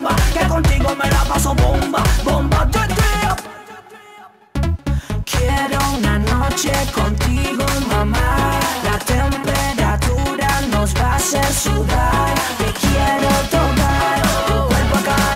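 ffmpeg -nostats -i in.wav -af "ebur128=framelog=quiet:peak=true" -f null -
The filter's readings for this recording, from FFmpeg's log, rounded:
Integrated loudness:
  I:         -16.8 LUFS
  Threshold: -27.0 LUFS
Loudness range:
  LRA:         3.8 LU
  Threshold: -37.3 LUFS
  LRA low:   -19.8 LUFS
  LRA high:  -16.0 LUFS
True peak:
  Peak:       -4.6 dBFS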